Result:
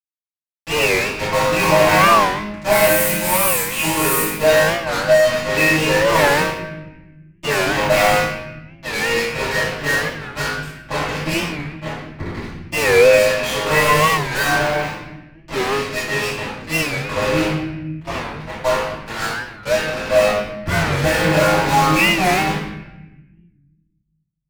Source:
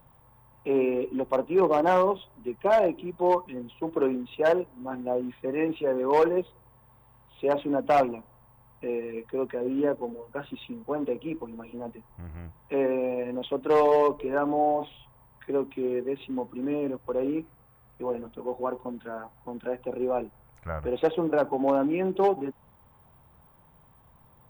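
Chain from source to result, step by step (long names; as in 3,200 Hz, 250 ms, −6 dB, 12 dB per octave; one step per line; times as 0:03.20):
0:02.70–0:04.19: spike at every zero crossing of −26 dBFS
low-pass that shuts in the quiet parts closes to 1,200 Hz, open at −22 dBFS
drawn EQ curve 190 Hz 0 dB, 280 Hz −19 dB, 1,400 Hz 0 dB, 2,200 Hz +8 dB, 4,700 Hz −10 dB, 8,700 Hz +13 dB
in parallel at +2 dB: downward compressor 6 to 1, threshold −46 dBFS, peak gain reduction 22.5 dB
on the sum: resonators tuned to a chord G#2 fifth, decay 0.73 s
fuzz pedal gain 59 dB, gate −53 dBFS
convolution reverb RT60 1.0 s, pre-delay 3 ms, DRR −14 dB
wow of a warped record 45 rpm, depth 160 cents
level −11.5 dB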